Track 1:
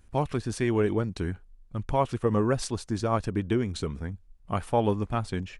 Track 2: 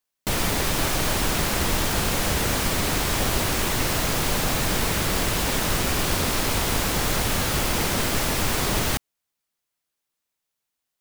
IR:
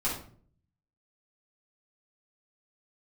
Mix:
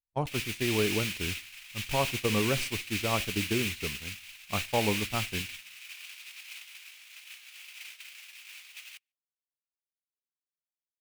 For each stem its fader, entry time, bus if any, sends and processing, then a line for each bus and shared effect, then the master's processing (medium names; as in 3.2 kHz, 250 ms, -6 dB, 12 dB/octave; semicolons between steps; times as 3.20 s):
-4.5 dB, 0.00 s, send -24 dB, no echo send, none
-11.0 dB, 0.00 s, send -19.5 dB, echo send -16.5 dB, resonant high-pass 2.5 kHz, resonance Q 4.2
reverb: on, RT60 0.50 s, pre-delay 4 ms
echo: delay 148 ms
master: gate -30 dBFS, range -43 dB